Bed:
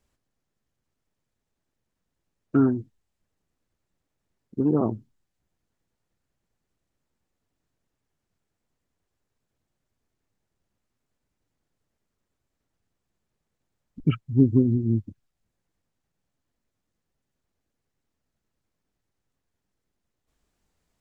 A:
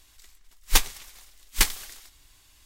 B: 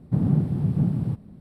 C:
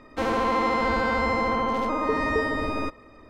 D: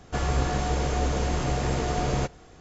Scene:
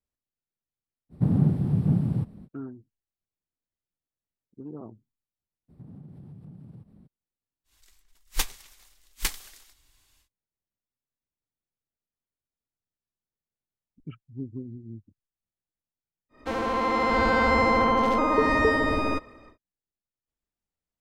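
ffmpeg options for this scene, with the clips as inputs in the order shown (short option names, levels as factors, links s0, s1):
-filter_complex "[2:a]asplit=2[s0][s1];[0:a]volume=0.126[s2];[s1]acompressor=threshold=0.0178:ratio=6:attack=3.2:release=140:knee=1:detection=peak[s3];[3:a]dynaudnorm=f=320:g=5:m=2.37[s4];[s0]atrim=end=1.4,asetpts=PTS-STARTPTS,volume=0.944,afade=t=in:d=0.05,afade=t=out:st=1.35:d=0.05,adelay=1090[s5];[s3]atrim=end=1.4,asetpts=PTS-STARTPTS,volume=0.376,afade=t=in:d=0.02,afade=t=out:st=1.38:d=0.02,adelay=5680[s6];[1:a]atrim=end=2.65,asetpts=PTS-STARTPTS,volume=0.422,afade=t=in:d=0.1,afade=t=out:st=2.55:d=0.1,adelay=7640[s7];[s4]atrim=end=3.29,asetpts=PTS-STARTPTS,volume=0.631,afade=t=in:d=0.1,afade=t=out:st=3.19:d=0.1,adelay=16290[s8];[s2][s5][s6][s7][s8]amix=inputs=5:normalize=0"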